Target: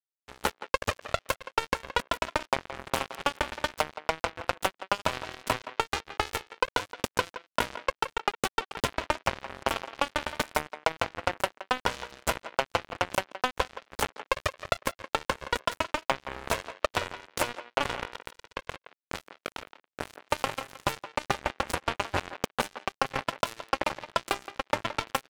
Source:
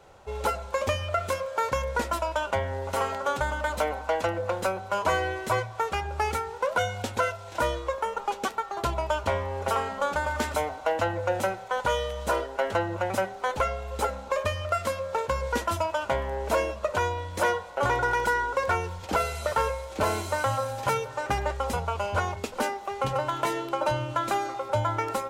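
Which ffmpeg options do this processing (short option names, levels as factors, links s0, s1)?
-filter_complex "[0:a]acompressor=threshold=0.0398:ratio=10,asplit=3[s0][s1][s2];[s0]afade=t=out:st=18.02:d=0.02[s3];[s1]flanger=delay=20:depth=5.8:speed=2.1,afade=t=in:st=18.02:d=0.02,afade=t=out:st=20.28:d=0.02[s4];[s2]afade=t=in:st=20.28:d=0.02[s5];[s3][s4][s5]amix=inputs=3:normalize=0,acrusher=bits=3:mix=0:aa=0.5,asplit=2[s6][s7];[s7]adelay=170,highpass=300,lowpass=3400,asoftclip=type=hard:threshold=0.0891,volume=0.251[s8];[s6][s8]amix=inputs=2:normalize=0,volume=2.24"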